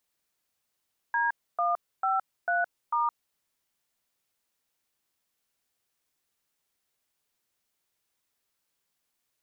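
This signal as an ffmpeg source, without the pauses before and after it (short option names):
-f lavfi -i "aevalsrc='0.0501*clip(min(mod(t,0.446),0.166-mod(t,0.446))/0.002,0,1)*(eq(floor(t/0.446),0)*(sin(2*PI*941*mod(t,0.446))+sin(2*PI*1633*mod(t,0.446)))+eq(floor(t/0.446),1)*(sin(2*PI*697*mod(t,0.446))+sin(2*PI*1209*mod(t,0.446)))+eq(floor(t/0.446),2)*(sin(2*PI*770*mod(t,0.446))+sin(2*PI*1336*mod(t,0.446)))+eq(floor(t/0.446),3)*(sin(2*PI*697*mod(t,0.446))+sin(2*PI*1477*mod(t,0.446)))+eq(floor(t/0.446),4)*(sin(2*PI*941*mod(t,0.446))+sin(2*PI*1209*mod(t,0.446))))':d=2.23:s=44100"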